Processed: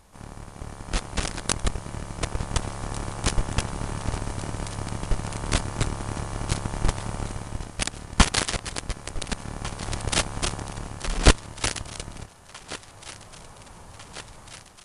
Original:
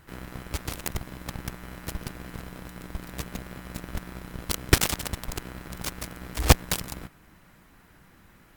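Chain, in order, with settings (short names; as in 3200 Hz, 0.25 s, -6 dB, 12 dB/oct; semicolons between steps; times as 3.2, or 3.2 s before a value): AGC gain up to 11 dB; requantised 10-bit, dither none; on a send: thinning echo 0.836 s, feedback 71%, high-pass 760 Hz, level -16 dB; on the sum: speed mistake 78 rpm record played at 45 rpm; gain -1 dB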